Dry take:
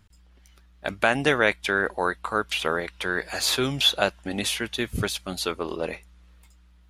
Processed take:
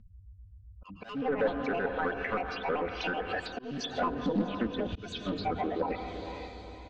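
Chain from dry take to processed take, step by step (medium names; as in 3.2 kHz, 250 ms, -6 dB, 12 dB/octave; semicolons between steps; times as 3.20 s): pitch shift switched off and on +9.5 st, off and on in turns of 64 ms; spectral gate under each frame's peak -10 dB strong; saturation -26 dBFS, distortion -7 dB; low-pass 4.5 kHz 12 dB/octave; bass shelf 270 Hz +2.5 dB; echo that smears into a reverb 479 ms, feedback 43%, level -9 dB; reverberation RT60 1.1 s, pre-delay 105 ms, DRR 13 dB; slow attack 402 ms; peaking EQ 870 Hz -4 dB 0.59 oct; comb 4 ms, depth 54%; low-pass that closes with the level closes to 1.2 kHz, closed at -28.5 dBFS; loudspeaker Doppler distortion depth 0.28 ms; trim +2.5 dB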